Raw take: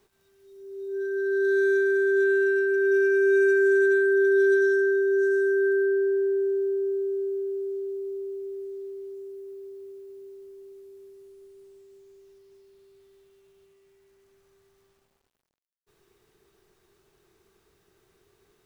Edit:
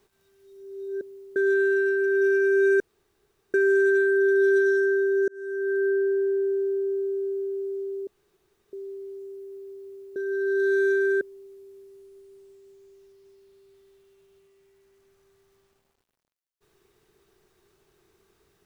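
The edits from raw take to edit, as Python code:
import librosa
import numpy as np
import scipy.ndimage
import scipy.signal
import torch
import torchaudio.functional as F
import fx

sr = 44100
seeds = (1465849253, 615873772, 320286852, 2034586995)

y = fx.edit(x, sr, fx.swap(start_s=1.01, length_s=1.05, other_s=10.12, other_length_s=0.35),
    fx.insert_room_tone(at_s=3.5, length_s=0.74),
    fx.fade_in_span(start_s=5.24, length_s=0.6),
    fx.room_tone_fill(start_s=8.03, length_s=0.66), tone=tone)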